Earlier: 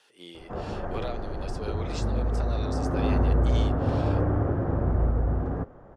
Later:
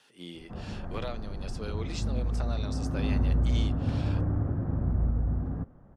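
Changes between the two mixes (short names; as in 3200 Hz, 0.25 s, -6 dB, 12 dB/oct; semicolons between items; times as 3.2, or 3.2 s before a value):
background -10.5 dB; master: add resonant low shelf 300 Hz +7.5 dB, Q 1.5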